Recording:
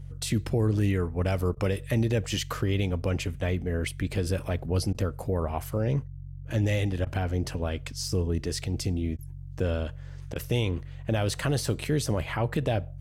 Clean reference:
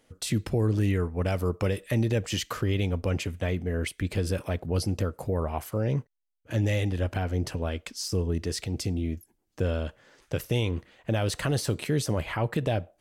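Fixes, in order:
hum removal 46.1 Hz, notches 3
repair the gap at 0:01.55/0:04.93/0:07.05/0:09.17/0:10.34, 15 ms

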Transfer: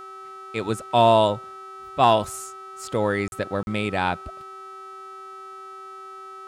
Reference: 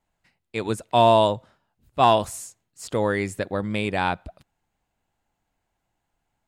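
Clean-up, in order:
hum removal 384.9 Hz, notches 31
notch filter 1,300 Hz, Q 30
repair the gap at 0:03.28/0:03.63, 41 ms

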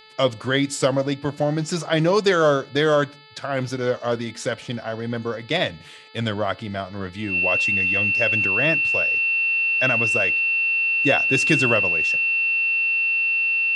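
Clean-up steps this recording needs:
hum removal 435.2 Hz, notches 11
notch filter 2,700 Hz, Q 30

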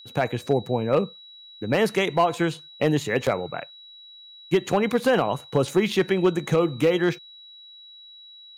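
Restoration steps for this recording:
clipped peaks rebuilt −11.5 dBFS
notch filter 3,900 Hz, Q 30

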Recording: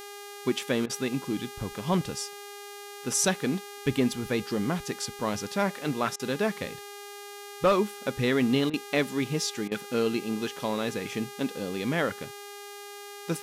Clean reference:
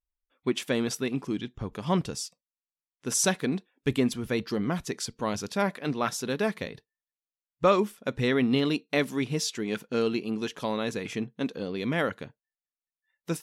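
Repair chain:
clipped peaks rebuilt −15 dBFS
hum removal 406.4 Hz, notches 37
repair the gap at 0:00.86/0:06.16/0:08.70/0:09.68, 34 ms

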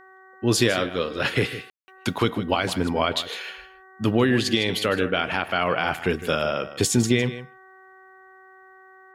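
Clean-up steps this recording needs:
hum removal 378.5 Hz, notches 5
ambience match 0:01.70–0:01.88
echo removal 156 ms −13.5 dB

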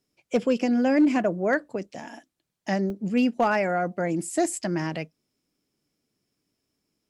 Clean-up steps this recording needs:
clipped peaks rebuilt −13.5 dBFS
repair the gap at 0:02.29/0:02.90, 1.1 ms

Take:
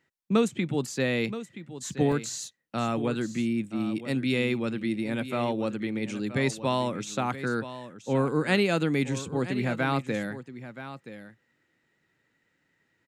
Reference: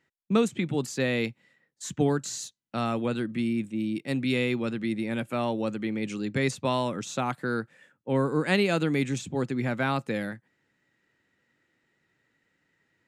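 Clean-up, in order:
repair the gap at 0:02.12, 1.3 ms
echo removal 975 ms −13 dB

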